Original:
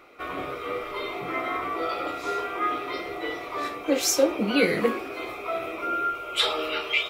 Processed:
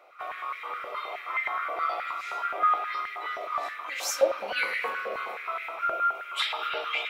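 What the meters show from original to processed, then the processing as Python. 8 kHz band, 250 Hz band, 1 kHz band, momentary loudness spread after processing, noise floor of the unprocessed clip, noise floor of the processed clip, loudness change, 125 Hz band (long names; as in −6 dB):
−7.5 dB, −24.0 dB, +1.0 dB, 9 LU, −37 dBFS, −41 dBFS, −2.5 dB, below −20 dB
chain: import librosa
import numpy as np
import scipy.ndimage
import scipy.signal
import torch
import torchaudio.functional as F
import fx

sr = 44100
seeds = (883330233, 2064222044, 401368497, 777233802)

y = fx.rev_spring(x, sr, rt60_s=3.6, pass_ms=(35, 45), chirp_ms=65, drr_db=4.5)
y = fx.filter_held_highpass(y, sr, hz=9.5, low_hz=630.0, high_hz=2000.0)
y = y * 10.0 ** (-7.5 / 20.0)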